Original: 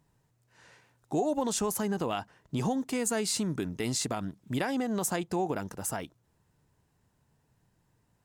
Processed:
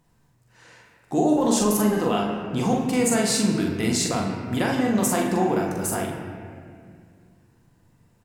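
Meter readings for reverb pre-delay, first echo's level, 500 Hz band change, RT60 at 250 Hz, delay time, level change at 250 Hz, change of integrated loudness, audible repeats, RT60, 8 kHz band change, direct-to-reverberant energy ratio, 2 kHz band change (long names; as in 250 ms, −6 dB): 4 ms, −3.5 dB, +8.5 dB, 3.0 s, 43 ms, +10.0 dB, +9.0 dB, 1, 2.2 s, +7.0 dB, −2.0 dB, +8.5 dB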